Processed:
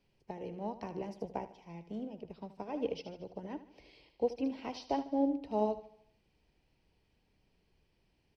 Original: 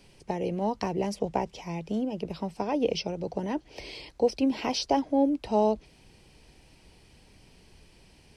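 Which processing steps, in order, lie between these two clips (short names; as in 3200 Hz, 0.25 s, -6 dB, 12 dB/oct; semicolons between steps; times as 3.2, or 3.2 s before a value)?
bell 9100 Hz -12.5 dB 1.2 oct; on a send: feedback echo 76 ms, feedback 54%, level -10 dB; on the sum: upward expander 1.5:1, over -40 dBFS; gain -7 dB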